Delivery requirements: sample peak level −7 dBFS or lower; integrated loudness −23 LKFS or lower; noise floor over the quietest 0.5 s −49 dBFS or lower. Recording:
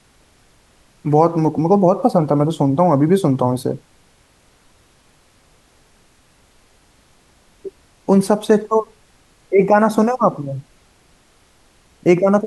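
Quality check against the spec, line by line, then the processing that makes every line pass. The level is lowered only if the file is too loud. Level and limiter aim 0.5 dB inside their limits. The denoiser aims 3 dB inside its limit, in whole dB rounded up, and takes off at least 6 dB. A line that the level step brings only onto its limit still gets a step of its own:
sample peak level −1.5 dBFS: out of spec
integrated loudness −16.5 LKFS: out of spec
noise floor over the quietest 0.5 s −54 dBFS: in spec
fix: level −7 dB

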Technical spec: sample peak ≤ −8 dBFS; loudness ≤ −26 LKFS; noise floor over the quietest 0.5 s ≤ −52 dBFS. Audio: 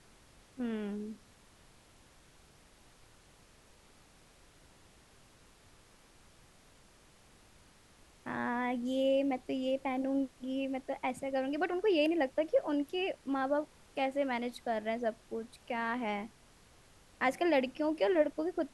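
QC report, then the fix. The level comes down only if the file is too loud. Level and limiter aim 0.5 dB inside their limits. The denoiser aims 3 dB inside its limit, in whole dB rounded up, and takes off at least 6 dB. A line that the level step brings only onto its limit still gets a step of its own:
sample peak −16.5 dBFS: in spec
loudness −34.0 LKFS: in spec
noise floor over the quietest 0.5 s −62 dBFS: in spec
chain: no processing needed

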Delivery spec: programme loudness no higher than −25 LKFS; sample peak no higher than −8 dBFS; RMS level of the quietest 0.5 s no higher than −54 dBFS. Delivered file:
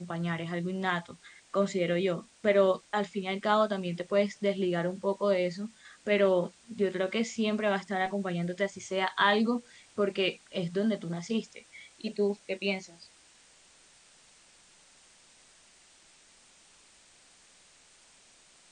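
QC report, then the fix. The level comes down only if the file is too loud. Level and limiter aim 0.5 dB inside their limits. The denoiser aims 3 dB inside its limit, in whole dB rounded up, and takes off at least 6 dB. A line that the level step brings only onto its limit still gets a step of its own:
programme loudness −30.0 LKFS: in spec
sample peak −10.5 dBFS: in spec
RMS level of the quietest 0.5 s −60 dBFS: in spec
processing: no processing needed

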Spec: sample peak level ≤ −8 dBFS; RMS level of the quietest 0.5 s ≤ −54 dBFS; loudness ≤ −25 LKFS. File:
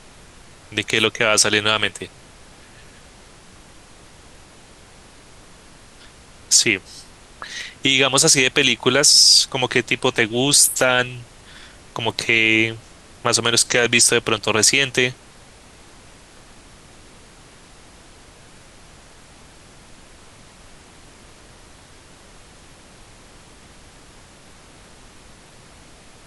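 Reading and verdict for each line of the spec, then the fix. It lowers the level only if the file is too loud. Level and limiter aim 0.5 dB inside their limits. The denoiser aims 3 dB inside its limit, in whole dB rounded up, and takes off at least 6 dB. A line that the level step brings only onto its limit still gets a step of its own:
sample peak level −2.0 dBFS: out of spec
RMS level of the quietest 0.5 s −46 dBFS: out of spec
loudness −15.5 LKFS: out of spec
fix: level −10 dB

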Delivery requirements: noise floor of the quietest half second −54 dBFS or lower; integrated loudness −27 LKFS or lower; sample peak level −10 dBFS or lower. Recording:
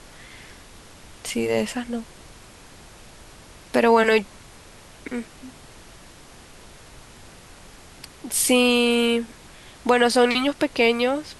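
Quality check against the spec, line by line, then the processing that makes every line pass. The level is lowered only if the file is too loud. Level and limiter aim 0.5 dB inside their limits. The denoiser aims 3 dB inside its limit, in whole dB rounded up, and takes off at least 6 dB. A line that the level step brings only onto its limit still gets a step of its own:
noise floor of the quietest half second −46 dBFS: out of spec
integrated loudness −21.0 LKFS: out of spec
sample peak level −5.5 dBFS: out of spec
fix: broadband denoise 6 dB, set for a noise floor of −46 dBFS
level −6.5 dB

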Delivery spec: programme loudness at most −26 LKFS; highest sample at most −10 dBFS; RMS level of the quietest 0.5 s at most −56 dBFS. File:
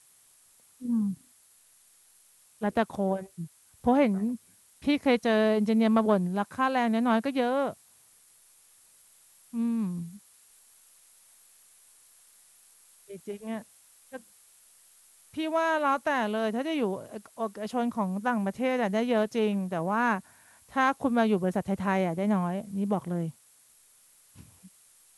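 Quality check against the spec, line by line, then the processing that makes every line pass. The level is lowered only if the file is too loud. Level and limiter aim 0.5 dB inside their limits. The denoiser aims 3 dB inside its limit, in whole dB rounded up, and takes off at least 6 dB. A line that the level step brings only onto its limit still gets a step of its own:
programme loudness −28.0 LKFS: in spec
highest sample −12.0 dBFS: in spec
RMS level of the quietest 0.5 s −61 dBFS: in spec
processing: no processing needed

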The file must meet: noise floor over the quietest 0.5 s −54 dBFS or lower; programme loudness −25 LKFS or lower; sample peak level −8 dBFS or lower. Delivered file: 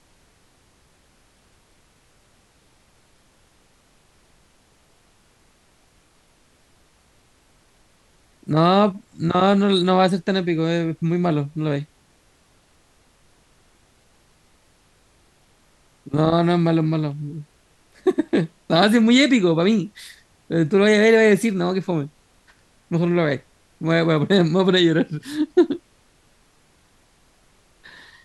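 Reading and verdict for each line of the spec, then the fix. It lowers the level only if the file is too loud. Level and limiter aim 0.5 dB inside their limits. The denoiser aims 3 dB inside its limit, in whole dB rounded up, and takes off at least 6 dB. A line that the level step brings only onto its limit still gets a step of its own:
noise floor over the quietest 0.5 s −58 dBFS: in spec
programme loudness −19.5 LKFS: out of spec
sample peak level −5.0 dBFS: out of spec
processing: level −6 dB

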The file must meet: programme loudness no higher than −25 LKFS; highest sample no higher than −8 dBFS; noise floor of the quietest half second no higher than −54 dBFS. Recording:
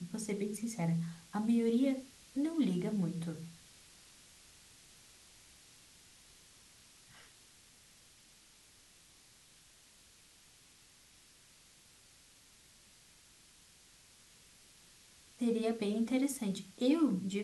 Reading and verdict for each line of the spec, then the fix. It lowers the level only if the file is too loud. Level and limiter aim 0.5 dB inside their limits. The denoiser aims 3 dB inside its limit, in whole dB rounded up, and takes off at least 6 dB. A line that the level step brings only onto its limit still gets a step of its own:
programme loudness −35.0 LKFS: in spec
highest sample −20.0 dBFS: in spec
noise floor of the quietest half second −63 dBFS: in spec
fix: no processing needed

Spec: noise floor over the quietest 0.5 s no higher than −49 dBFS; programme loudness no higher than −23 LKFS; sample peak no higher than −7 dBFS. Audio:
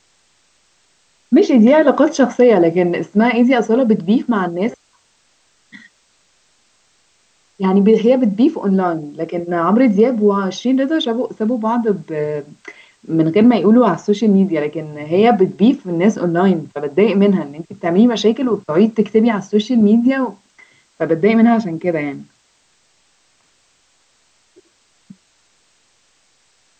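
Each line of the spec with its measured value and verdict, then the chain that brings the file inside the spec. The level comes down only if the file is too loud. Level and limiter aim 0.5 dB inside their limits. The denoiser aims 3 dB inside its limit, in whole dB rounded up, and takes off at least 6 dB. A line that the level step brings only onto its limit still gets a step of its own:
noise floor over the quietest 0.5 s −59 dBFS: in spec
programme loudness −15.0 LKFS: out of spec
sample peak −2.5 dBFS: out of spec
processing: level −8.5 dB

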